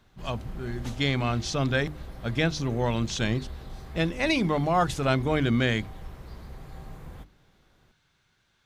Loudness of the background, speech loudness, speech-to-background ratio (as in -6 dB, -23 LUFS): -43.5 LUFS, -27.5 LUFS, 16.0 dB